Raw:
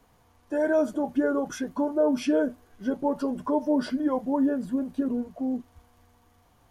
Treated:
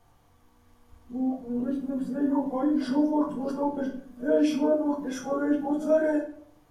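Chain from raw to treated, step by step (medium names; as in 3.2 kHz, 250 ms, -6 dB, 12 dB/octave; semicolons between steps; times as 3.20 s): reverse the whole clip; simulated room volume 62 m³, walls mixed, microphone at 0.72 m; trim -4.5 dB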